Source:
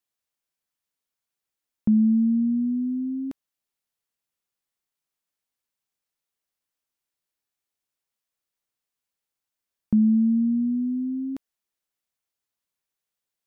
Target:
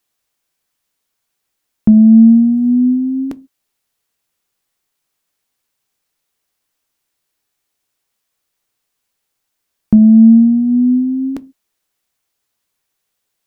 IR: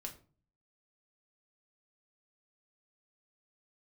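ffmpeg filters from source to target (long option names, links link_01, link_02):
-filter_complex "[0:a]acontrast=76,asettb=1/sr,asplit=3[link_01][link_02][link_03];[link_01]atrim=end=2.264[link_04];[link_02]atrim=start=2.26:end=2.72,asetpts=PTS-STARTPTS,afade=type=in:duration=0.004:curve=qsin,afade=type=out:start_time=0.456:duration=0.004:curve=qsin,aeval=exprs='val(0)*gte(abs(val(0)),0.00316)':channel_layout=same[link_05];[link_03]atrim=start=2.716[link_06];[link_04][link_05]acrossfade=duration=0.004:curve1=hsin:curve2=qsin[link_07];[link_07][link_06]acrossfade=duration=0.004:curve1=qsin:curve2=hsin,asplit=2[link_08][link_09];[1:a]atrim=start_sample=2205,afade=type=out:start_time=0.34:duration=0.01,atrim=end_sample=15435,asetrate=79380,aresample=44100[link_10];[link_09][link_10]afir=irnorm=-1:irlink=0,volume=-2dB[link_11];[link_08][link_11]amix=inputs=2:normalize=0,volume=4.5dB"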